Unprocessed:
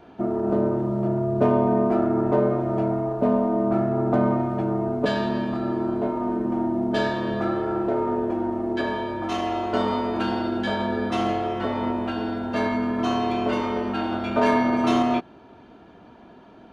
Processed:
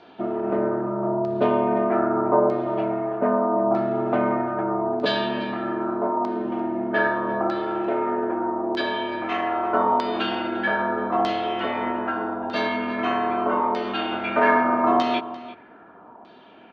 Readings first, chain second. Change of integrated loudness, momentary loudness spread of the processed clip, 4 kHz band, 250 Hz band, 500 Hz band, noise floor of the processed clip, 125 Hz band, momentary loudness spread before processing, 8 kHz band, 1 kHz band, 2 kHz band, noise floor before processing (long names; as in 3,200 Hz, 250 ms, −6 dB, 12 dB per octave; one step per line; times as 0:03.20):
+0.5 dB, 7 LU, +3.0 dB, −3.0 dB, +1.0 dB, −48 dBFS, −8.0 dB, 6 LU, can't be measured, +4.0 dB, +5.5 dB, −49 dBFS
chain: high-pass filter 380 Hz 6 dB per octave
auto-filter low-pass saw down 0.8 Hz 900–4,500 Hz
slap from a distant wall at 59 metres, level −15 dB
level +1.5 dB